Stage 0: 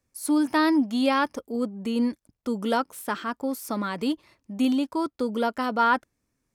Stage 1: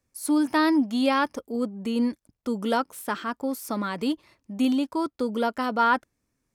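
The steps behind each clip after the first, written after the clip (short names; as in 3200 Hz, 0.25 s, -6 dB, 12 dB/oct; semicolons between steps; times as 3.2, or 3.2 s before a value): nothing audible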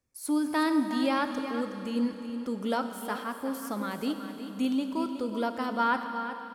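echo 0.368 s -11 dB; Schroeder reverb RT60 3.7 s, combs from 30 ms, DRR 7.5 dB; gain -5.5 dB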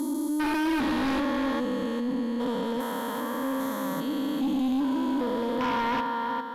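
stepped spectrum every 0.4 s; ripple EQ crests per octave 1.1, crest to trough 10 dB; sine folder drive 9 dB, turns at -16.5 dBFS; gain -6.5 dB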